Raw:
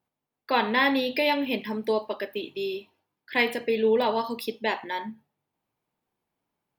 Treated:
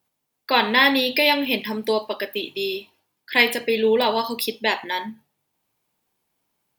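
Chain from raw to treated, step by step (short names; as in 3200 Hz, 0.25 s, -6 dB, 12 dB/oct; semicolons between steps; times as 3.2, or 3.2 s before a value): high shelf 2700 Hz +11 dB; gain +3 dB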